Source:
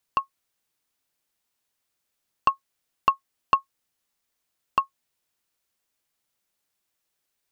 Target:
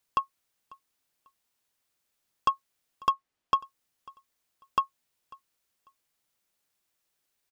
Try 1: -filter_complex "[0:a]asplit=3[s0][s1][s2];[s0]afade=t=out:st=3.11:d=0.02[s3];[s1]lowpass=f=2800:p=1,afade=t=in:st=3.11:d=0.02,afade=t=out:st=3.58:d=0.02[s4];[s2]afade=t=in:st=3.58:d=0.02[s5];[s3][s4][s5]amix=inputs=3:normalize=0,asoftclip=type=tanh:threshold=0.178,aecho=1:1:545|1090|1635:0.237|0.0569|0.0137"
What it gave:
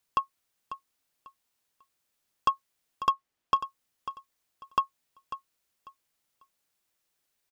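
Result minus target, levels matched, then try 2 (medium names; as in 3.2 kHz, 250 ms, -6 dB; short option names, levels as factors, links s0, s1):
echo-to-direct +11.5 dB
-filter_complex "[0:a]asplit=3[s0][s1][s2];[s0]afade=t=out:st=3.11:d=0.02[s3];[s1]lowpass=f=2800:p=1,afade=t=in:st=3.11:d=0.02,afade=t=out:st=3.58:d=0.02[s4];[s2]afade=t=in:st=3.58:d=0.02[s5];[s3][s4][s5]amix=inputs=3:normalize=0,asoftclip=type=tanh:threshold=0.178,aecho=1:1:545|1090:0.0631|0.0151"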